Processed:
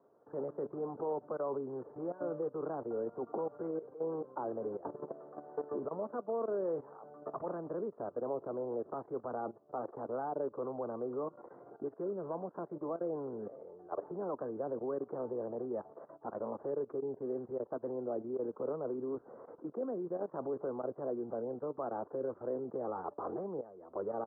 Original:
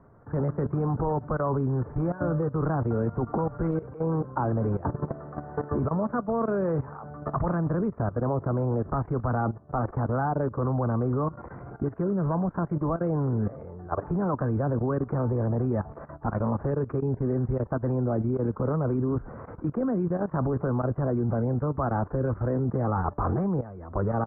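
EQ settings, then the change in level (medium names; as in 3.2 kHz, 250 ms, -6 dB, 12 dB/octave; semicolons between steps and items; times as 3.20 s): ladder band-pass 540 Hz, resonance 30%; +2.5 dB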